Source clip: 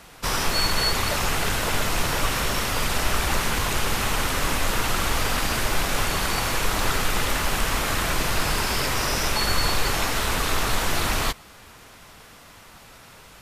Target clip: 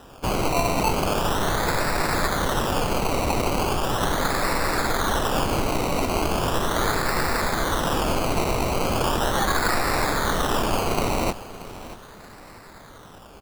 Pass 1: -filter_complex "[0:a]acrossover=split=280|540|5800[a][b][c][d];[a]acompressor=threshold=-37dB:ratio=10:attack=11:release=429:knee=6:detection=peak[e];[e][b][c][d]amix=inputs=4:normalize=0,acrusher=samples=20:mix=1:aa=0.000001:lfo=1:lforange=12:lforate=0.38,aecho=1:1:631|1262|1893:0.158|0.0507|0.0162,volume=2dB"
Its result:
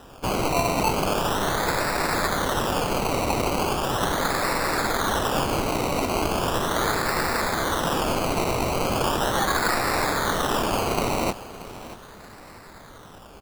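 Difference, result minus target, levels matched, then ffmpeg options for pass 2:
compressor: peak gain reduction +10.5 dB
-filter_complex "[0:a]acrossover=split=280|540|5800[a][b][c][d];[a]acompressor=threshold=-25.5dB:ratio=10:attack=11:release=429:knee=6:detection=peak[e];[e][b][c][d]amix=inputs=4:normalize=0,acrusher=samples=20:mix=1:aa=0.000001:lfo=1:lforange=12:lforate=0.38,aecho=1:1:631|1262|1893:0.158|0.0507|0.0162,volume=2dB"

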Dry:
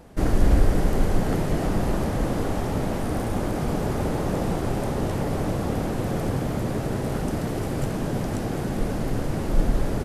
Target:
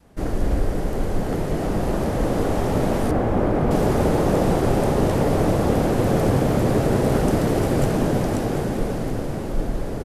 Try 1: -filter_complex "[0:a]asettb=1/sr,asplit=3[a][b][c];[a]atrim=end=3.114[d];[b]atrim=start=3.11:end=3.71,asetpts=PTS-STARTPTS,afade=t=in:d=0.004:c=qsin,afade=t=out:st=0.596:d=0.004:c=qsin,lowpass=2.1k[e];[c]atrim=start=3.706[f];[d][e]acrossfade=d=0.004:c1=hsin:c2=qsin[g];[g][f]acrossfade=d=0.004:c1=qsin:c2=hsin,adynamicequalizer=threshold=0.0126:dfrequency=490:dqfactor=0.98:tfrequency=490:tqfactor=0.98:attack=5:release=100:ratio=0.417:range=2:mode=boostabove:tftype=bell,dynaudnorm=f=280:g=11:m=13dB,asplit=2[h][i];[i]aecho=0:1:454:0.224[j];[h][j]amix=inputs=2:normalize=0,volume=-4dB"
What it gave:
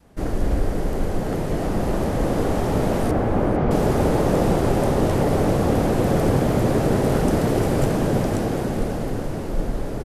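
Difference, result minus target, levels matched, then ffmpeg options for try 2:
echo 0.279 s early
-filter_complex "[0:a]asettb=1/sr,asplit=3[a][b][c];[a]atrim=end=3.114[d];[b]atrim=start=3.11:end=3.71,asetpts=PTS-STARTPTS,afade=t=in:d=0.004:c=qsin,afade=t=out:st=0.596:d=0.004:c=qsin,lowpass=2.1k[e];[c]atrim=start=3.706[f];[d][e]acrossfade=d=0.004:c1=hsin:c2=qsin[g];[g][f]acrossfade=d=0.004:c1=qsin:c2=hsin,adynamicequalizer=threshold=0.0126:dfrequency=490:dqfactor=0.98:tfrequency=490:tqfactor=0.98:attack=5:release=100:ratio=0.417:range=2:mode=boostabove:tftype=bell,dynaudnorm=f=280:g=11:m=13dB,asplit=2[h][i];[i]aecho=0:1:733:0.224[j];[h][j]amix=inputs=2:normalize=0,volume=-4dB"

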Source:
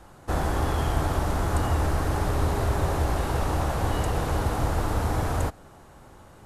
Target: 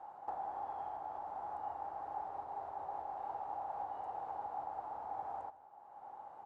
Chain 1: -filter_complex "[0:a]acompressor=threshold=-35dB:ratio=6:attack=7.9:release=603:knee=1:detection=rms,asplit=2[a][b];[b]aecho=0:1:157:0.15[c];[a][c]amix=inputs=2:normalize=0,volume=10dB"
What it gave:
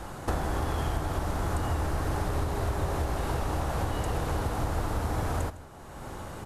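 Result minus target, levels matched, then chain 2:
1000 Hz band -7.5 dB
-filter_complex "[0:a]acompressor=threshold=-35dB:ratio=6:attack=7.9:release=603:knee=1:detection=rms,bandpass=f=810:t=q:w=9.1:csg=0,asplit=2[a][b];[b]aecho=0:1:157:0.15[c];[a][c]amix=inputs=2:normalize=0,volume=10dB"

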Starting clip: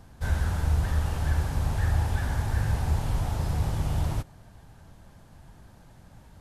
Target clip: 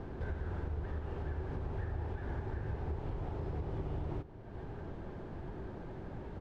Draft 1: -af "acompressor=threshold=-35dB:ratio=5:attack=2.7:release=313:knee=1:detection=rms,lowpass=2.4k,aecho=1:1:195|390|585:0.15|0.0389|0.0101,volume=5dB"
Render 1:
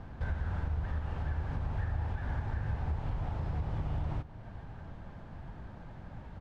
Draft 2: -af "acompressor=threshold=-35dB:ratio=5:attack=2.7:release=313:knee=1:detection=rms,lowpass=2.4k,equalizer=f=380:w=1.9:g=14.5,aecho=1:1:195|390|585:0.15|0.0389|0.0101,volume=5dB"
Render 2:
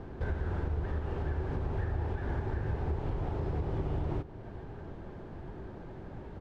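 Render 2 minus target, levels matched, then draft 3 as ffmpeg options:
compressor: peak gain reduction -5 dB
-af "acompressor=threshold=-41.5dB:ratio=5:attack=2.7:release=313:knee=1:detection=rms,lowpass=2.4k,equalizer=f=380:w=1.9:g=14.5,aecho=1:1:195|390|585:0.15|0.0389|0.0101,volume=5dB"

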